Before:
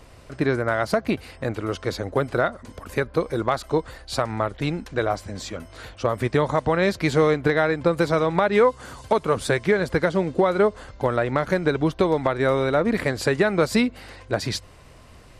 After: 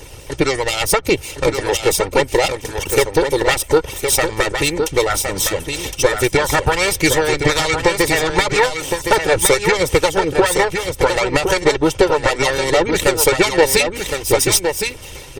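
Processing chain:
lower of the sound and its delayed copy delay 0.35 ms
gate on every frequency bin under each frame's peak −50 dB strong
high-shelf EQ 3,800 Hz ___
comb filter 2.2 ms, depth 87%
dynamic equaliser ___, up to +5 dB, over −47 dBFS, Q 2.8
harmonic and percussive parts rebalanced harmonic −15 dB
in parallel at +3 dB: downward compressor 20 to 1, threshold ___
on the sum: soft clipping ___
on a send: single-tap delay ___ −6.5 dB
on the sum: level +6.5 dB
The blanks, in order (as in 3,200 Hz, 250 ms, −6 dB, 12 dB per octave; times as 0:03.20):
+10 dB, 7,600 Hz, −31 dBFS, −10 dBFS, 1,064 ms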